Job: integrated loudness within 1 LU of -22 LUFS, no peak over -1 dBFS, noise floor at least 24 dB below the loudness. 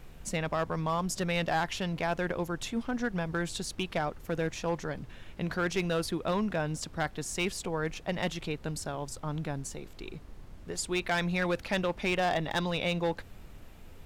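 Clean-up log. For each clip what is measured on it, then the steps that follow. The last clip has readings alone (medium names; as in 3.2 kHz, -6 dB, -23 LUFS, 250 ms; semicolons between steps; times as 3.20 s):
clipped samples 1.0%; clipping level -22.5 dBFS; noise floor -50 dBFS; noise floor target -57 dBFS; loudness -32.5 LUFS; peak level -22.5 dBFS; loudness target -22.0 LUFS
-> clip repair -22.5 dBFS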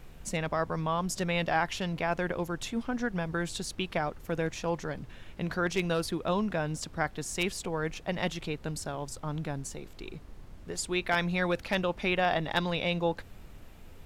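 clipped samples 0.0%; noise floor -50 dBFS; noise floor target -56 dBFS
-> noise print and reduce 6 dB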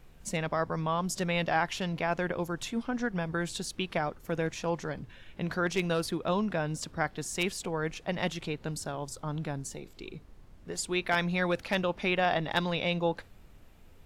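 noise floor -54 dBFS; noise floor target -56 dBFS
-> noise print and reduce 6 dB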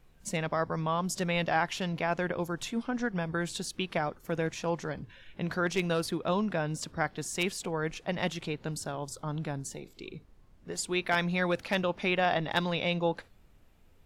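noise floor -59 dBFS; loudness -32.0 LUFS; peak level -13.5 dBFS; loudness target -22.0 LUFS
-> trim +10 dB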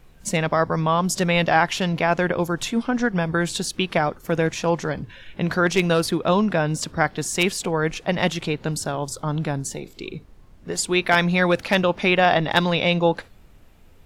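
loudness -22.0 LUFS; peak level -3.5 dBFS; noise floor -49 dBFS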